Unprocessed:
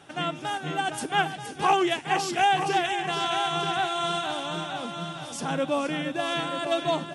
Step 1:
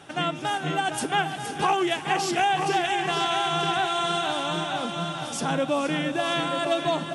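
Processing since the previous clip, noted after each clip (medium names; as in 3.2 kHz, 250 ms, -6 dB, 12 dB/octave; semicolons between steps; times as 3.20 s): compression 2.5:1, threshold -26 dBFS, peak gain reduction 6.5 dB; echo that smears into a reverb 461 ms, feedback 62%, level -14.5 dB; trim +4 dB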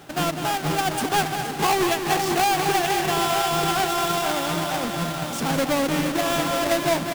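square wave that keeps the level; delay 202 ms -8.5 dB; trim -2 dB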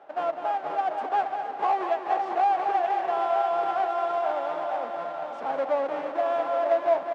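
ladder band-pass 760 Hz, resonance 45%; on a send at -16 dB: reverberation RT60 0.30 s, pre-delay 3 ms; on the sum: trim +6.5 dB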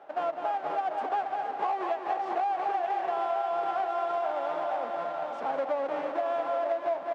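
compression, threshold -26 dBFS, peak gain reduction 9 dB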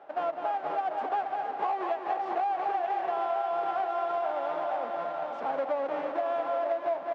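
distance through air 70 m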